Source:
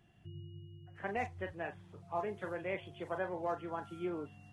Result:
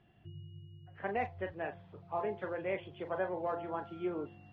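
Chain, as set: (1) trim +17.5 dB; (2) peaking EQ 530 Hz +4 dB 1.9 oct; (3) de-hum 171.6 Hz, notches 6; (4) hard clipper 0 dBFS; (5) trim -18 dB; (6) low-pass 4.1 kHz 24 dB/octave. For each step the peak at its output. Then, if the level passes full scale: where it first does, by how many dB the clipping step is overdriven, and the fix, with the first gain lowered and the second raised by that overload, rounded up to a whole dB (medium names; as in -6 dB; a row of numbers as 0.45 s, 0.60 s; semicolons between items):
-6.5 dBFS, -4.0 dBFS, -4.0 dBFS, -4.0 dBFS, -22.0 dBFS, -22.0 dBFS; nothing clips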